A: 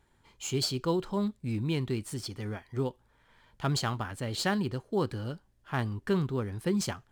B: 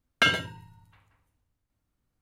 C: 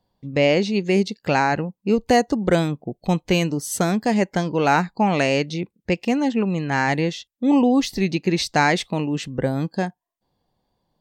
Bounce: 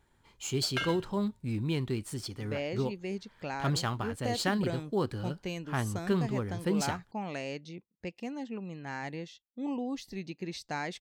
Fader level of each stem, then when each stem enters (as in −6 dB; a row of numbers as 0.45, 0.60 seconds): −1.0, −12.0, −18.0 decibels; 0.00, 0.55, 2.15 seconds